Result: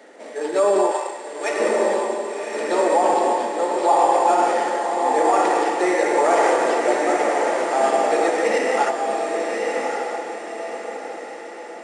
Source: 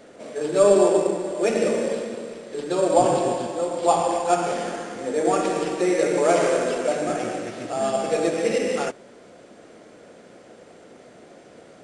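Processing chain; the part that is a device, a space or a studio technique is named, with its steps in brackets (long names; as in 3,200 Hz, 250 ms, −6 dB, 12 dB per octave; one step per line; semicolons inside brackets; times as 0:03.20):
0:00.91–0:01.60: high-pass filter 820 Hz 12 dB per octave
dynamic equaliser 1,000 Hz, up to +5 dB, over −33 dBFS, Q 1.1
laptop speaker (high-pass filter 260 Hz 24 dB per octave; parametric band 860 Hz +10 dB 0.22 octaves; parametric band 1,900 Hz +10 dB 0.25 octaves; brickwall limiter −9 dBFS, peak gain reduction 10 dB)
feedback delay with all-pass diffusion 1,118 ms, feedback 45%, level −3.5 dB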